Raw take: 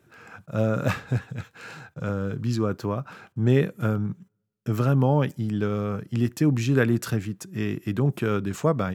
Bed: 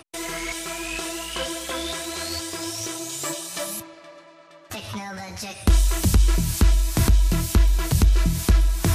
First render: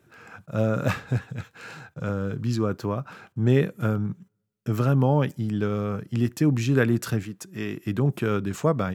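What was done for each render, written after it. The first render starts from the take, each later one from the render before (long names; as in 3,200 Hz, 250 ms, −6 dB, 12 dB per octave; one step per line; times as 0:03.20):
0:07.23–0:07.86: low-shelf EQ 190 Hz −9 dB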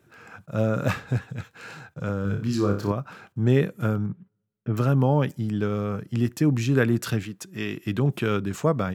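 0:02.22–0:02.92: flutter between parallel walls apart 5.1 metres, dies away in 0.39 s
0:04.06–0:04.77: high-frequency loss of the air 420 metres
0:07.04–0:08.37: dynamic equaliser 3,200 Hz, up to +6 dB, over −50 dBFS, Q 1.1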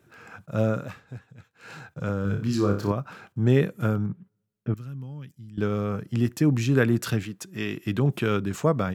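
0:00.70–0:01.75: duck −14.5 dB, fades 0.17 s
0:04.74–0:05.58: guitar amp tone stack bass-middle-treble 6-0-2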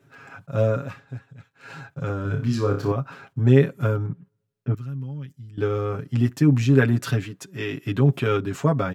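high-shelf EQ 5,800 Hz −6.5 dB
comb filter 7.3 ms, depth 86%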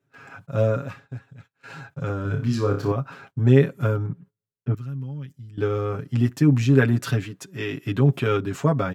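noise gate −48 dBFS, range −15 dB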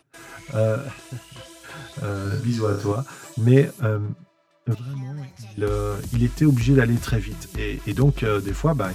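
mix in bed −14.5 dB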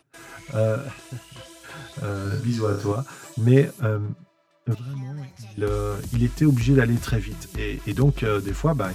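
level −1 dB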